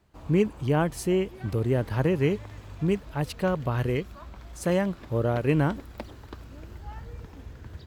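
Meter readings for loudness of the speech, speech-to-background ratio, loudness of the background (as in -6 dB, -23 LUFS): -27.0 LUFS, 17.5 dB, -44.5 LUFS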